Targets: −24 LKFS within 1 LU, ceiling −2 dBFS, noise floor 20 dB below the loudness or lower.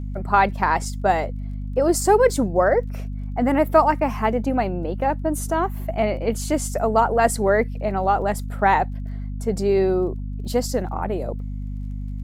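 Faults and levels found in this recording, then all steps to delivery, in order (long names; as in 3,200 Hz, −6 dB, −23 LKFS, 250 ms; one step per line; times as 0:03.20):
crackle rate 20 per second; mains hum 50 Hz; hum harmonics up to 250 Hz; level of the hum −26 dBFS; integrated loudness −21.5 LKFS; sample peak −3.0 dBFS; target loudness −24.0 LKFS
→ click removal
mains-hum notches 50/100/150/200/250 Hz
level −2.5 dB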